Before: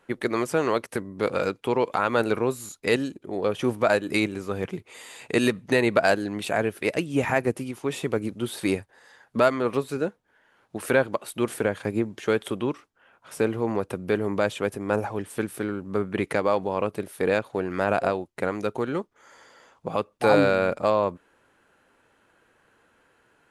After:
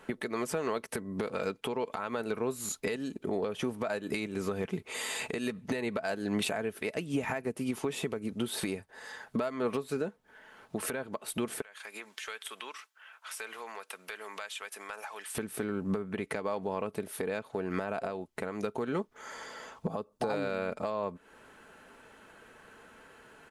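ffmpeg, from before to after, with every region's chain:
ffmpeg -i in.wav -filter_complex "[0:a]asettb=1/sr,asplit=3[link_01][link_02][link_03];[link_01]atrim=end=11.614[link_04];[link_02]atrim=start=11.61:end=15.35,asetpts=PTS-STARTPTS,afade=type=in:duration=0.004:curve=qsin,afade=type=out:start_time=3.736:duration=0.004:curve=qsin,highpass=1400,acompressor=threshold=-47dB:ratio=4:attack=3.2:release=140:knee=1:detection=peak[link_05];[link_03]atrim=start=15.346[link_06];[link_04][link_05]acrossfade=duration=0.004:curve1=hsin:curve2=qsin[link_07];[link_07][link_06]acrossfade=duration=0.004:curve1=qsin:curve2=hsin,asettb=1/sr,asplit=3[link_08][link_09][link_10];[link_08]atrim=end=19.874[link_11];[link_09]atrim=start=19.87:end=20.3,asetpts=PTS-STARTPTS,afade=type=in:duration=0.004:curve=qsin,afade=type=out:start_time=0.426:duration=0.004:curve=qsin,acrossover=split=6500[link_12][link_13];[link_13]acompressor=threshold=-60dB:ratio=4:attack=1:release=60[link_14];[link_12][link_14]amix=inputs=2:normalize=0,equalizer=frequency=2300:width=0.99:gain=-12.5[link_15];[link_10]atrim=start=20.296[link_16];[link_11][link_15]acrossfade=duration=0.004:curve1=hsin:curve2=qsin[link_17];[link_17][link_16]acrossfade=duration=0.004:curve1=qsin:curve2=hsin,aecho=1:1:4.6:0.33,acompressor=threshold=-32dB:ratio=8,alimiter=level_in=4.5dB:limit=-24dB:level=0:latency=1:release=416,volume=-4.5dB,volume=7.5dB" out.wav

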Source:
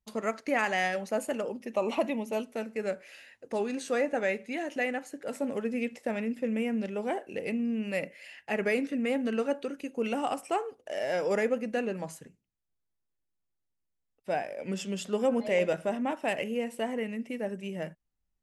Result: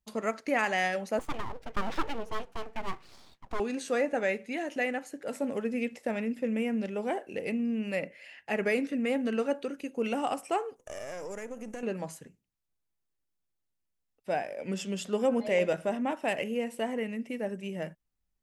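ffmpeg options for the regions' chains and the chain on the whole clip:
ffmpeg -i in.wav -filter_complex "[0:a]asettb=1/sr,asplit=3[link_01][link_02][link_03];[link_01]atrim=end=1.194[link_04];[link_02]atrim=start=1.19:end=3.6,asetpts=PTS-STARTPTS,afade=type=in:duration=0.004:curve=qsin,afade=type=out:start_time=2.406:duration=0.004:curve=qsin,aemphasis=mode=reproduction:type=50fm,aeval=exprs='abs(val(0))':channel_layout=same[link_05];[link_03]atrim=start=3.596[link_06];[link_04][link_05]acrossfade=duration=0.004:curve1=hsin:curve2=qsin[link_07];[link_07][link_06]acrossfade=duration=0.004:curve1=qsin:curve2=hsin,asettb=1/sr,asplit=3[link_08][link_09][link_10];[link_08]atrim=end=7.954[link_11];[link_09]atrim=start=7.95:end=8.46,asetpts=PTS-STARTPTS,afade=type=in:duration=0.004:curve=qsin,afade=type=out:start_time=0.506:duration=0.004:curve=qsin,highshelf=frequency=5600:gain=-9.5,bandreject=frequency=60:width_type=h:width=6,bandreject=frequency=120:width_type=h:width=6[link_12];[link_10]atrim=start=8.456[link_13];[link_11][link_12]acrossfade=duration=0.004:curve1=hsin:curve2=qsin[link_14];[link_14][link_13]acrossfade=duration=0.004:curve1=qsin:curve2=hsin,asettb=1/sr,asplit=3[link_15][link_16][link_17];[link_15]atrim=end=10.764[link_18];[link_16]atrim=start=10.76:end=11.83,asetpts=PTS-STARTPTS,afade=type=in:duration=0.004:curve=qsin,afade=type=out:start_time=1.066:duration=0.004:curve=qsin,aeval=exprs='if(lt(val(0),0),0.447*val(0),val(0))':channel_layout=same,highshelf=frequency=5300:width_type=q:width=3:gain=7,acompressor=threshold=-35dB:ratio=6:attack=3.2:release=140:knee=1:detection=peak[link_19];[link_17]atrim=start=11.826[link_20];[link_18][link_19]acrossfade=duration=0.004:curve1=hsin:curve2=qsin[link_21];[link_21][link_20]acrossfade=duration=0.004:curve1=qsin:curve2=hsin" out.wav

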